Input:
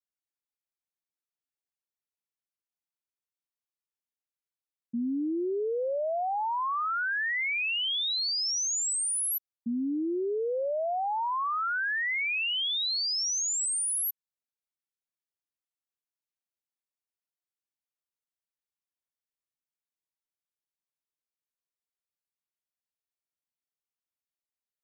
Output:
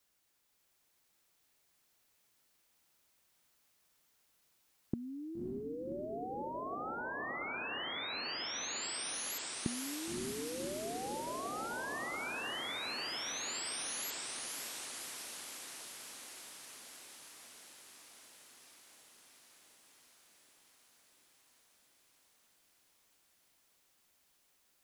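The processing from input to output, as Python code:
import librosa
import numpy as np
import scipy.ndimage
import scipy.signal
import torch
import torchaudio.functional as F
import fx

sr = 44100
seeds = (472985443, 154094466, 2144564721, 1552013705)

y = fx.gate_flip(x, sr, shuts_db=-37.0, range_db=-32)
y = fx.echo_diffused(y, sr, ms=566, feedback_pct=76, wet_db=-3)
y = F.gain(torch.from_numpy(y), 18.0).numpy()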